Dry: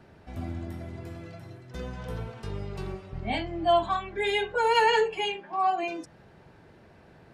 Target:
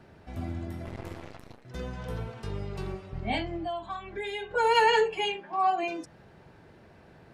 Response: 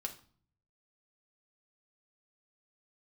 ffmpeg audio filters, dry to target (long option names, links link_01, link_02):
-filter_complex "[0:a]asettb=1/sr,asplit=3[link_01][link_02][link_03];[link_01]atrim=end=0.854[link_04];[link_02]atrim=start=0.85:end=1.65,asetpts=PTS-STARTPTS,afade=type=in:duration=0.004:curve=qsin,afade=type=out:start_time=0.796:duration=0.004:curve=qsin,aeval=exprs='0.0398*(cos(1*acos(clip(val(0)/0.0398,-1,1)))-cos(1*PI/2))+0.00562*(cos(6*acos(clip(val(0)/0.0398,-1,1)))-cos(6*PI/2))+0.00708*(cos(7*acos(clip(val(0)/0.0398,-1,1)))-cos(7*PI/2))':channel_layout=same[link_05];[link_03]atrim=start=1.646[link_06];[link_04][link_05]acrossfade=duration=0.004:curve1=hsin:curve2=qsin[link_07];[link_07][link_06]acrossfade=duration=0.004:curve1=qsin:curve2=hsin,asettb=1/sr,asplit=3[link_08][link_09][link_10];[link_08]atrim=end=3.564[link_11];[link_09]atrim=start=3.56:end=4.51,asetpts=PTS-STARTPTS,afade=type=in:duration=0.004:curve=qsin,afade=type=out:start_time=0.946:duration=0.004:curve=qsin,acompressor=threshold=-33dB:ratio=5[link_12];[link_10]atrim=start=4.506[link_13];[link_11][link_12]acrossfade=duration=0.004:curve1=hsin:curve2=qsin[link_14];[link_14][link_13]acrossfade=duration=0.004:curve1=qsin:curve2=hsin"